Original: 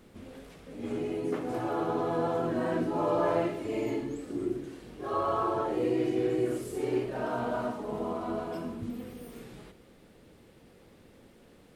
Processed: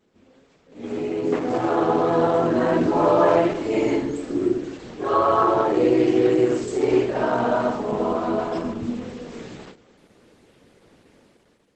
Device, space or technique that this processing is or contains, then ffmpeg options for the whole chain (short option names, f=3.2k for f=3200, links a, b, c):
video call: -af "highpass=f=170:p=1,dynaudnorm=f=700:g=3:m=12dB,agate=range=-7dB:threshold=-42dB:ratio=16:detection=peak" -ar 48000 -c:a libopus -b:a 12k